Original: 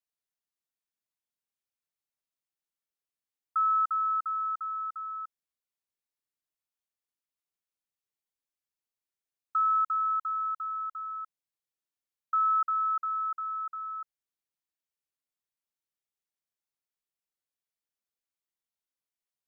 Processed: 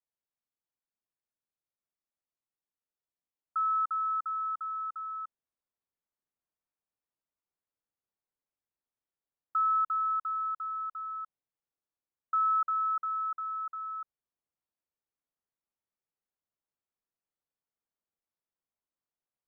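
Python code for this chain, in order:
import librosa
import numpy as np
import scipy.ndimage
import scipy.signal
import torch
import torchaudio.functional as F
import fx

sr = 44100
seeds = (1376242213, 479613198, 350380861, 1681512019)

p1 = scipy.signal.sosfilt(scipy.signal.butter(2, 1300.0, 'lowpass', fs=sr, output='sos'), x)
p2 = fx.rider(p1, sr, range_db=3, speed_s=2.0)
p3 = p1 + (p2 * librosa.db_to_amplitude(1.5))
y = p3 * librosa.db_to_amplitude(-6.0)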